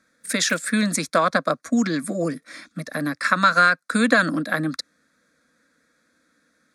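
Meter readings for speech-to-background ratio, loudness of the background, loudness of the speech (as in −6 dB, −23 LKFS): 20.0 dB, −41.0 LKFS, −21.0 LKFS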